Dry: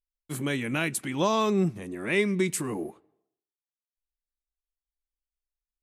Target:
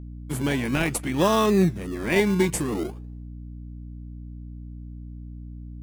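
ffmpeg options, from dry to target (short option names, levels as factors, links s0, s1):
-filter_complex "[0:a]bandreject=f=4000:w=15,asplit=2[s0][s1];[s1]acrusher=samples=27:mix=1:aa=0.000001:lfo=1:lforange=16.2:lforate=0.54,volume=0.562[s2];[s0][s2]amix=inputs=2:normalize=0,aeval=exprs='val(0)+0.0126*(sin(2*PI*60*n/s)+sin(2*PI*2*60*n/s)/2+sin(2*PI*3*60*n/s)/3+sin(2*PI*4*60*n/s)/4+sin(2*PI*5*60*n/s)/5)':c=same,volume=1.19"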